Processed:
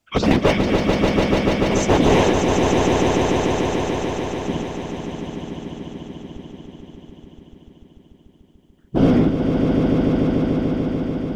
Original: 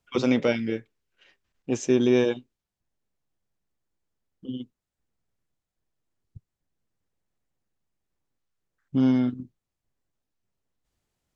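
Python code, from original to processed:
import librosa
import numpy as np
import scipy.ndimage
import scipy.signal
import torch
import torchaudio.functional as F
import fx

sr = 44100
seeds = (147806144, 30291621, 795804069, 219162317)

y = np.minimum(x, 2.0 * 10.0 ** (-20.0 / 20.0) - x)
y = fx.whisperise(y, sr, seeds[0])
y = fx.echo_swell(y, sr, ms=146, loudest=5, wet_db=-6.0)
y = y * 10.0 ** (7.0 / 20.0)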